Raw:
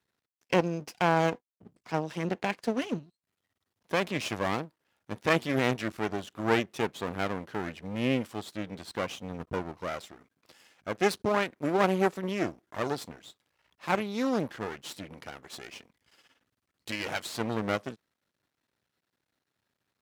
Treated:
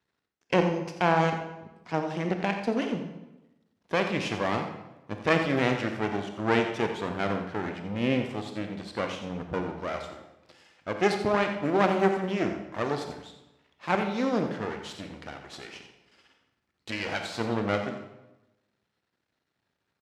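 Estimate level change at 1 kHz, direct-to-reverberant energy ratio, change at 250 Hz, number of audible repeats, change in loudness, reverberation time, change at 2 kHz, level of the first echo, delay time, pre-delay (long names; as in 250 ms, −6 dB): +2.5 dB, 4.5 dB, +2.5 dB, 1, +2.5 dB, 1.0 s, +2.0 dB, −11.0 dB, 87 ms, 24 ms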